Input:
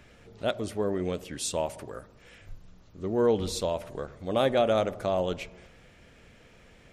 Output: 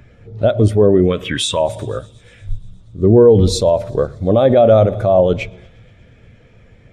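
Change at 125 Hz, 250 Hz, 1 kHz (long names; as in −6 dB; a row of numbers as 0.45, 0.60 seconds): +21.0, +16.0, +11.0 decibels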